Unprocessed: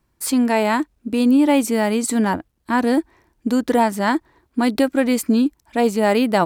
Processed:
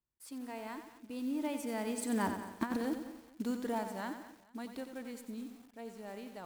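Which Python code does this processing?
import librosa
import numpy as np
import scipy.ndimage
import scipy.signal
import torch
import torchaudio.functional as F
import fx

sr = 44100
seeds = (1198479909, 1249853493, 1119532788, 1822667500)

p1 = fx.block_float(x, sr, bits=5)
p2 = fx.doppler_pass(p1, sr, speed_mps=10, closest_m=1.7, pass_at_s=2.69)
p3 = fx.over_compress(p2, sr, threshold_db=-23.0, ratio=-0.5)
p4 = p3 + fx.echo_feedback(p3, sr, ms=220, feedback_pct=37, wet_db=-17.0, dry=0)
p5 = fx.echo_crushed(p4, sr, ms=91, feedback_pct=55, bits=8, wet_db=-8)
y = p5 * librosa.db_to_amplitude(-7.0)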